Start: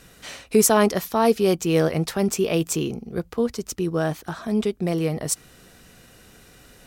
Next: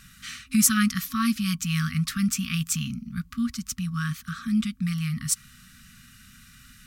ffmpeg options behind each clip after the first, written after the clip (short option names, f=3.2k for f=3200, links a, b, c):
-af "afftfilt=real='re*(1-between(b*sr/4096,260,1100))':imag='im*(1-between(b*sr/4096,260,1100))':win_size=4096:overlap=0.75"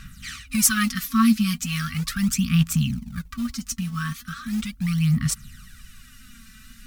-af "lowshelf=f=66:g=9.5,acrusher=bits=6:mode=log:mix=0:aa=0.000001,aphaser=in_gain=1:out_gain=1:delay=4.6:decay=0.61:speed=0.38:type=sinusoidal"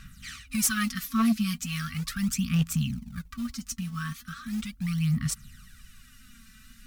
-af "asoftclip=type=hard:threshold=-12.5dB,volume=-5.5dB"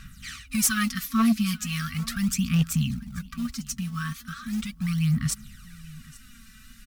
-af "aecho=1:1:835:0.0841,volume=2.5dB"